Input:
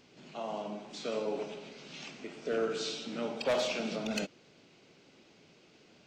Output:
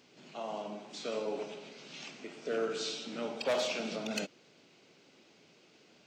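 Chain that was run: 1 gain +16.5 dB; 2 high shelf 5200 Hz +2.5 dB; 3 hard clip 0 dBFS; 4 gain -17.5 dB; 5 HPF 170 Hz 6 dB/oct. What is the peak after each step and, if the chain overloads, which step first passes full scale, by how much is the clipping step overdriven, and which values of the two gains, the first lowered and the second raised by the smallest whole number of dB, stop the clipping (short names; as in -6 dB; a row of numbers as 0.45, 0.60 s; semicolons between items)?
-7.0, -5.5, -5.5, -23.0, -22.0 dBFS; no overload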